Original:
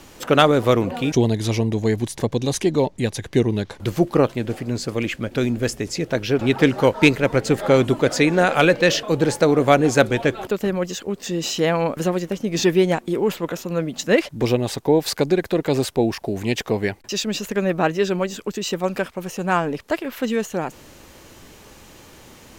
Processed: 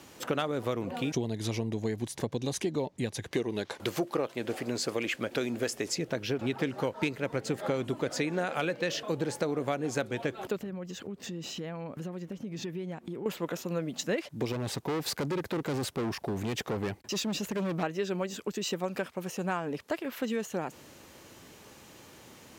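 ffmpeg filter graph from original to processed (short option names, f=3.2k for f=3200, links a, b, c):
-filter_complex "[0:a]asettb=1/sr,asplit=3[a][b][c];[a]atrim=end=3.314[d];[b]atrim=start=3.31:end=5.95,asetpts=PTS-STARTPTS,afade=t=in:d=0.004:c=qsin,afade=t=out:st=2.636:d=0.004:c=qsin,bass=f=250:g=-12,treble=f=4k:g=0,acontrast=47[e];[c]atrim=start=5.946[f];[d][e]acrossfade=d=0.004:c1=hsin:c2=qsin[g];[g][f]acrossfade=d=0.004:c1=qsin:c2=hsin,asettb=1/sr,asplit=3[h][i][j];[h]atrim=end=10.564[k];[i]atrim=start=10.56:end=13.26,asetpts=PTS-STARTPTS,afade=t=in:d=0.004:c=qsin,afade=t=out:st=2.696:d=0.004:c=qsin,bass=f=250:g=8,treble=f=4k:g=-5,acompressor=threshold=-30dB:ratio=4:attack=3.2:release=140:knee=1:detection=peak[l];[j]atrim=start=13.256[m];[k][l]acrossfade=d=0.004:c1=hsin:c2=qsin[n];[n][m]acrossfade=d=0.004:c1=qsin:c2=hsin,asettb=1/sr,asplit=3[o][p][q];[o]atrim=end=14.524[r];[p]atrim=start=14.52:end=17.83,asetpts=PTS-STARTPTS,afade=t=in:d=0.004:c=qsin,afade=t=out:st=3.306:d=0.004:c=qsin,lowshelf=f=380:g=5.5,asoftclip=type=hard:threshold=-20.5dB[s];[q]atrim=start=17.826[t];[r][s]acrossfade=d=0.004:c1=hsin:c2=qsin[u];[u][t]acrossfade=d=0.004:c1=qsin:c2=hsin,highpass=91,acompressor=threshold=-21dB:ratio=5,volume=-6.5dB"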